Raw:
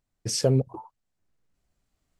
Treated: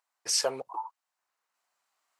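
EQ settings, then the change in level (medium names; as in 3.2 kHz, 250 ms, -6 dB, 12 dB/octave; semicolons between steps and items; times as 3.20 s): resonant high-pass 970 Hz, resonance Q 2.2; band-stop 3.4 kHz, Q 26; +2.0 dB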